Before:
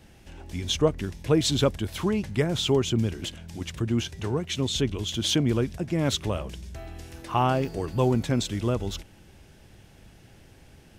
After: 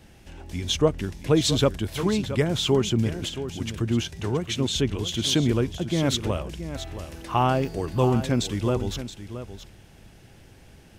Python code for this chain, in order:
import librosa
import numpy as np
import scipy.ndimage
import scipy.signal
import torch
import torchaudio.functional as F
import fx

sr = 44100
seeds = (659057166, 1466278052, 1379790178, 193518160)

y = x + 10.0 ** (-11.5 / 20.0) * np.pad(x, (int(673 * sr / 1000.0), 0))[:len(x)]
y = F.gain(torch.from_numpy(y), 1.5).numpy()